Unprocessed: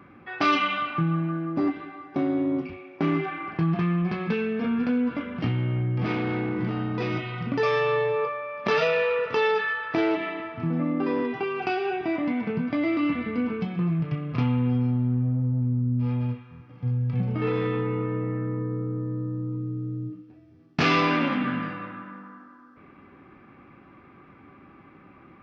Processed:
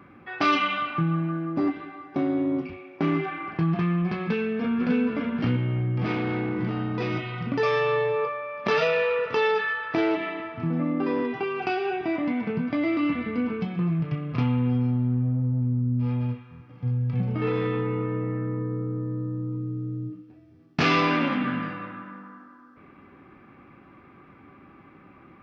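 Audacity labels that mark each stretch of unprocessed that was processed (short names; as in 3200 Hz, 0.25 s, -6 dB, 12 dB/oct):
4.200000	4.960000	echo throw 0.6 s, feedback 10%, level -4.5 dB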